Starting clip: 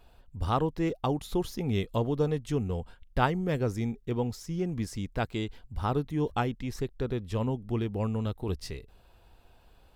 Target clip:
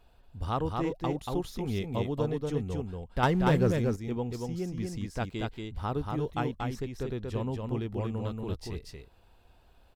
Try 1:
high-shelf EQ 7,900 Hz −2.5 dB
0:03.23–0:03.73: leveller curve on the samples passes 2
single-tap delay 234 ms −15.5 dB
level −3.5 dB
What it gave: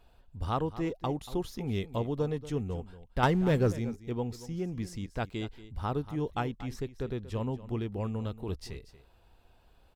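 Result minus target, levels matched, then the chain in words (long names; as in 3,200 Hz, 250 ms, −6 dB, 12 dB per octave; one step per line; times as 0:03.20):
echo-to-direct −12 dB
high-shelf EQ 7,900 Hz −2.5 dB
0:03.23–0:03.73: leveller curve on the samples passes 2
single-tap delay 234 ms −3.5 dB
level −3.5 dB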